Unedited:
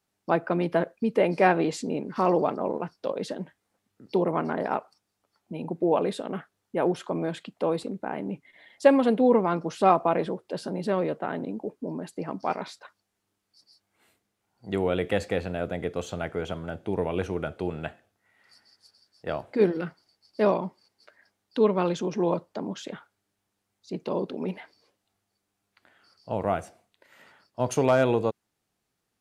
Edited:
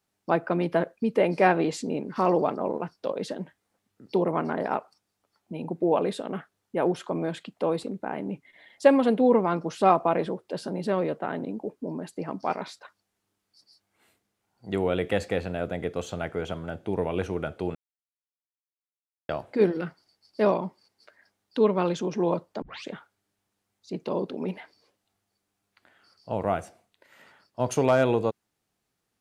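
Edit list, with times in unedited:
0:17.75–0:19.29: silence
0:22.62: tape start 0.25 s

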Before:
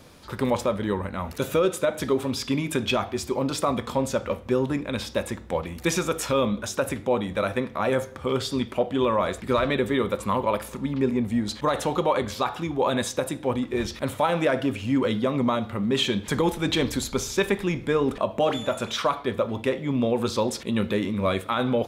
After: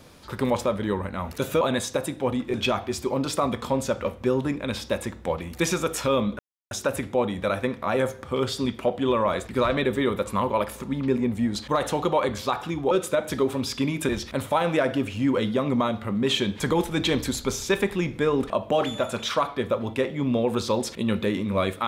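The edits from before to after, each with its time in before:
0:01.61–0:02.79: swap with 0:12.84–0:13.77
0:06.64: splice in silence 0.32 s

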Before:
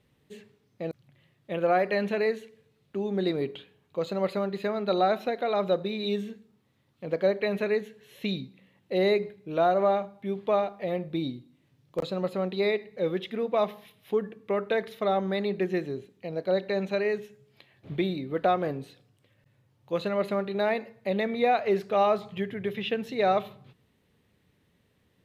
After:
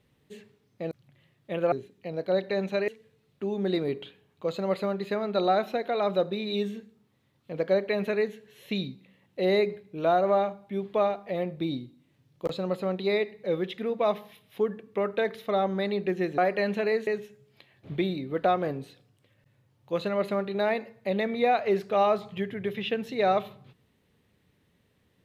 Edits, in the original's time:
0:01.72–0:02.41: swap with 0:15.91–0:17.07

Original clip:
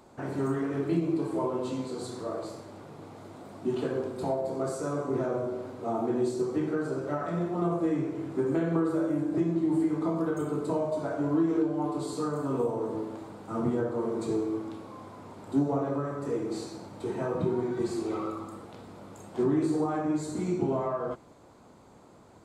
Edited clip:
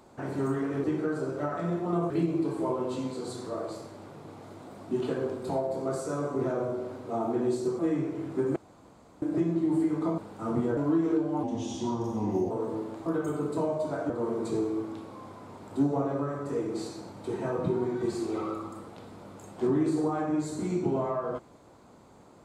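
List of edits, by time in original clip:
0:06.53–0:07.79: move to 0:00.84
0:08.56–0:09.22: fill with room tone
0:10.18–0:11.22: swap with 0:13.27–0:13.86
0:11.88–0:12.72: play speed 78%

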